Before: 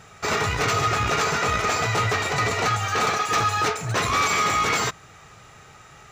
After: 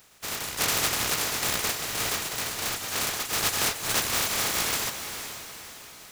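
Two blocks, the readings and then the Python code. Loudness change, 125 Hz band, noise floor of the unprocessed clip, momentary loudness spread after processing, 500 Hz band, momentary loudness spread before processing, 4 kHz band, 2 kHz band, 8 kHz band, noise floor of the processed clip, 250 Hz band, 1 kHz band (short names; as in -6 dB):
-4.0 dB, -13.5 dB, -48 dBFS, 12 LU, -9.5 dB, 4 LU, +0.5 dB, -6.5 dB, +3.0 dB, -47 dBFS, -6.5 dB, -12.0 dB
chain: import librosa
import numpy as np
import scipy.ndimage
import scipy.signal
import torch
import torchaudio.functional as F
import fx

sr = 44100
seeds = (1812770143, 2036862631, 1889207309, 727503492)

p1 = fx.spec_flatten(x, sr, power=0.2)
p2 = fx.dereverb_blind(p1, sr, rt60_s=0.54)
p3 = fx.tremolo_random(p2, sr, seeds[0], hz=3.5, depth_pct=55)
p4 = p3 + fx.echo_diffused(p3, sr, ms=468, feedback_pct=46, wet_db=-9.0, dry=0)
y = F.gain(torch.from_numpy(p4), -1.5).numpy()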